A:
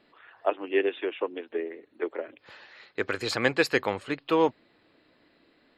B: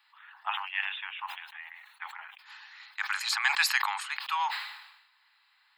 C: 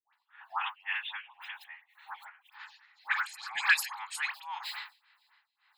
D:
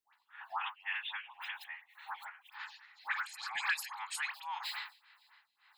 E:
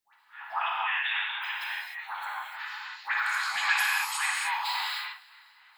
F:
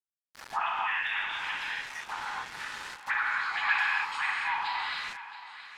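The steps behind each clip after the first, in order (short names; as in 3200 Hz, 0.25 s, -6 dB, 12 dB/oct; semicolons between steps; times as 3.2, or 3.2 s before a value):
steep high-pass 810 Hz 96 dB/oct; high shelf 7900 Hz +8.5 dB; sustainer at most 61 dB/s
dispersion highs, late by 0.136 s, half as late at 900 Hz; tremolo 1.9 Hz, depth 85%; photocell phaser 3.6 Hz; gain +4.5 dB
compressor 2:1, threshold -43 dBFS, peak gain reduction 13 dB; gain +3 dB
non-linear reverb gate 0.33 s flat, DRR -5 dB; gain +4.5 dB
sample gate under -38.5 dBFS; treble ducked by the level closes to 2700 Hz, closed at -27 dBFS; thinning echo 0.674 s, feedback 48%, high-pass 210 Hz, level -14 dB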